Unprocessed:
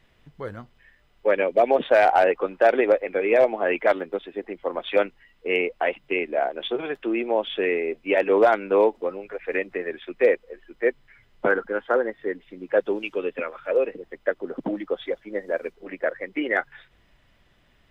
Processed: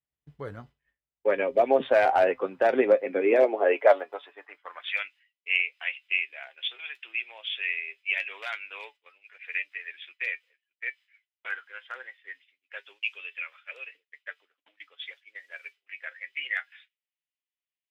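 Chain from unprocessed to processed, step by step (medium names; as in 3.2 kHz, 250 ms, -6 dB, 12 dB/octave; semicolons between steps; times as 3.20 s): flange 0.21 Hz, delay 6.7 ms, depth 1.1 ms, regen +62%; high-pass sweep 62 Hz -> 2.5 kHz, 2.09–5.08 s; expander -46 dBFS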